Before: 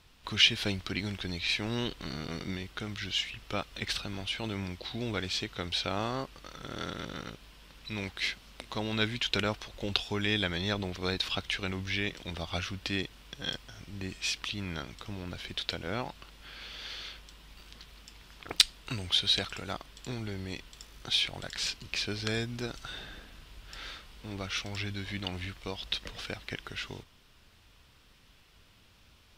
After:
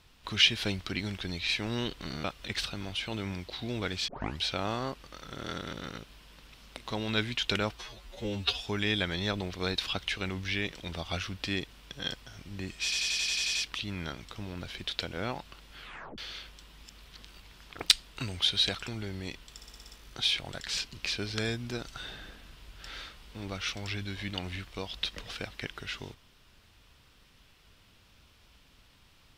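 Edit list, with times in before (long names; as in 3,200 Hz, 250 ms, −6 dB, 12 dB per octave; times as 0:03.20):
0:02.24–0:03.56: remove
0:05.40: tape start 0.31 s
0:07.86–0:08.38: remove
0:09.59–0:10.01: time-stretch 2×
0:14.25: stutter 0.09 s, 9 plays
0:16.50: tape stop 0.38 s
0:17.53–0:18.14: reverse
0:19.58–0:20.13: remove
0:20.81: stutter 0.06 s, 7 plays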